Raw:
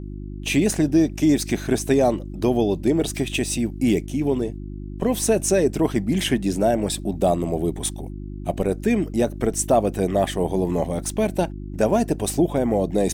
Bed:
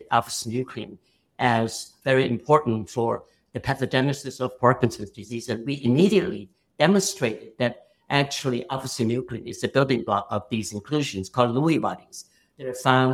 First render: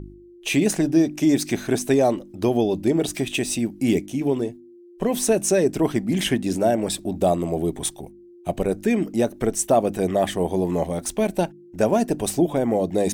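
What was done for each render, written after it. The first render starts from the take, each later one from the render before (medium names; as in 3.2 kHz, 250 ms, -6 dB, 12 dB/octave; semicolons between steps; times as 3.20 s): de-hum 50 Hz, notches 6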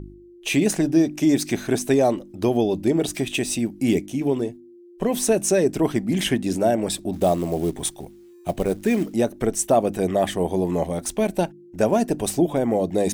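7.13–9.14 s: companded quantiser 6-bit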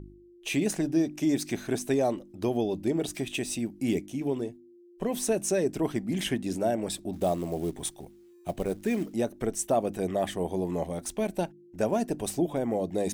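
trim -7.5 dB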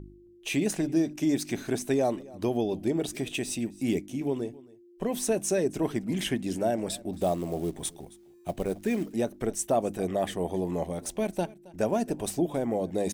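delay 270 ms -21.5 dB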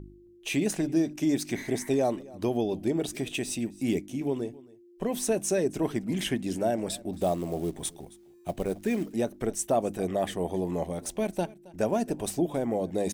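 1.57–1.93 s: spectral replace 820–2300 Hz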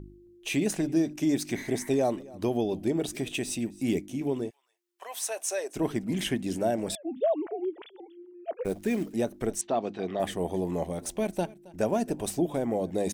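4.49–5.75 s: high-pass 1.1 kHz -> 500 Hz 24 dB/octave; 6.95–8.65 s: formants replaced by sine waves; 9.61–10.20 s: cabinet simulation 150–4600 Hz, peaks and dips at 150 Hz -9 dB, 290 Hz -3 dB, 550 Hz -7 dB, 4.1 kHz +6 dB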